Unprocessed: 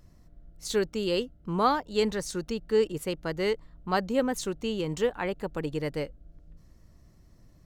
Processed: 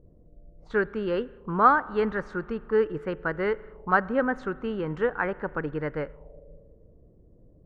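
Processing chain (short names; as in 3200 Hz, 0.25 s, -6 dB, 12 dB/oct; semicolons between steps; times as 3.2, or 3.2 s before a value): spring tank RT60 2.1 s, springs 39 ms, chirp 65 ms, DRR 19 dB; envelope low-pass 430–1500 Hz up, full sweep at -30.5 dBFS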